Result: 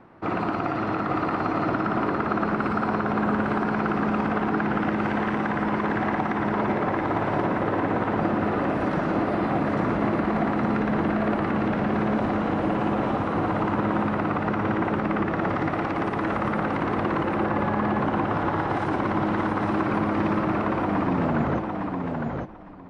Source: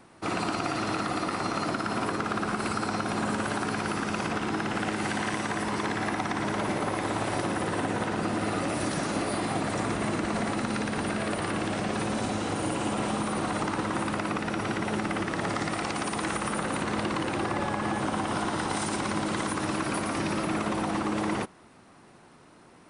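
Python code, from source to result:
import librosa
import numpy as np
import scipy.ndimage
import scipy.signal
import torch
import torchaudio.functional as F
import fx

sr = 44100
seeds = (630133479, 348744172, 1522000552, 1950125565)

y = fx.tape_stop_end(x, sr, length_s=2.07)
y = scipy.signal.sosfilt(scipy.signal.butter(2, 1700.0, 'lowpass', fs=sr, output='sos'), y)
y = fx.echo_feedback(y, sr, ms=857, feedback_pct=17, wet_db=-4)
y = y * 10.0 ** (4.0 / 20.0)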